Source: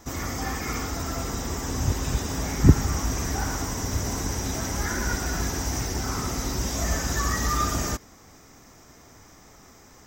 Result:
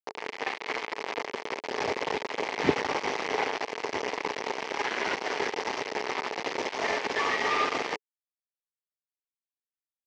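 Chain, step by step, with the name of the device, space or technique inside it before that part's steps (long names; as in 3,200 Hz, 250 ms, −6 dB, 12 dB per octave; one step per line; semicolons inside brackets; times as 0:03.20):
hand-held game console (bit reduction 4 bits; loudspeaker in its box 430–4,000 Hz, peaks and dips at 430 Hz +9 dB, 880 Hz +5 dB, 1,400 Hz −6 dB, 2,100 Hz +5 dB, 3,700 Hz −5 dB)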